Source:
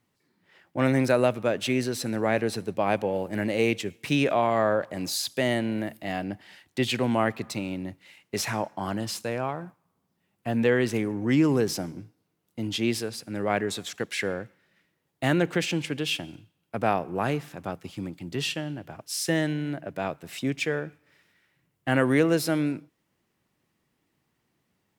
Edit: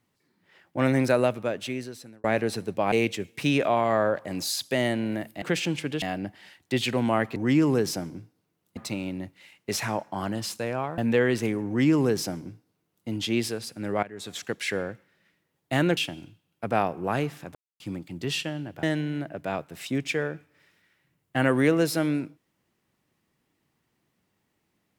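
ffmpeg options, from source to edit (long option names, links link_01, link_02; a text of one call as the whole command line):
ffmpeg -i in.wav -filter_complex "[0:a]asplit=13[link_01][link_02][link_03][link_04][link_05][link_06][link_07][link_08][link_09][link_10][link_11][link_12][link_13];[link_01]atrim=end=2.24,asetpts=PTS-STARTPTS,afade=type=out:start_time=1.15:duration=1.09[link_14];[link_02]atrim=start=2.24:end=2.922,asetpts=PTS-STARTPTS,afade=type=in:duration=0.004:curve=hsin[link_15];[link_03]atrim=start=3.578:end=6.082[link_16];[link_04]atrim=start=15.478:end=16.082[link_17];[link_05]atrim=start=6.078:end=7.422[link_18];[link_06]atrim=start=11.178:end=12.592[link_19];[link_07]atrim=start=7.418:end=9.632[link_20];[link_08]atrim=start=10.488:end=13.54,asetpts=PTS-STARTPTS,afade=type=out:start_time=3.048:duration=0.004:curve=hsin:silence=0.133352[link_21];[link_09]atrim=start=13.54:end=15.482,asetpts=PTS-STARTPTS,afade=type=in:duration=0.31:curve=qua:silence=0.133352[link_22];[link_10]atrim=start=16.078:end=17.66,asetpts=PTS-STARTPTS,afade=type=out:start_time=1.578:duration=0.004:curve=hsin[link_23];[link_11]atrim=start=17.66:end=17.91,asetpts=PTS-STARTPTS,volume=0[link_24];[link_12]atrim=start=17.91:end=18.942,asetpts=PTS-STARTPTS,afade=type=in:duration=0.004:curve=hsin[link_25];[link_13]atrim=start=19.348[link_26];[link_14][link_15]concat=n=2:v=0:a=1[link_27];[link_27][link_16]acrossfade=duration=0.004:curve1=hsin:curve2=hsin[link_28];[link_28][link_17]acrossfade=duration=0.004:curve1=hsin:curve2=hsin[link_29];[link_29][link_18]acrossfade=duration=0.004:curve1=hsin:curve2=hsin[link_30];[link_30][link_19]acrossfade=duration=0.004:curve1=hsin:curve2=hsin[link_31];[link_31][link_20]acrossfade=duration=0.004:curve1=hsin:curve2=hsin[link_32];[link_21][link_22]concat=n=2:v=0:a=1[link_33];[link_32][link_33]acrossfade=duration=0.004:curve1=hsin:curve2=hsin[link_34];[link_23][link_24][link_25]concat=n=3:v=0:a=1[link_35];[link_34][link_35]acrossfade=duration=0.004:curve1=hsin:curve2=hsin[link_36];[link_36][link_26]acrossfade=duration=0.004:curve1=hsin:curve2=hsin" out.wav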